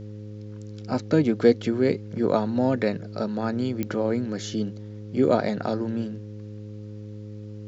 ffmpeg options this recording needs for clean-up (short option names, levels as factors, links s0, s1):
-af "adeclick=t=4,bandreject=f=105.1:t=h:w=4,bandreject=f=210.2:t=h:w=4,bandreject=f=315.3:t=h:w=4,bandreject=f=420.4:t=h:w=4,bandreject=f=525.5:t=h:w=4"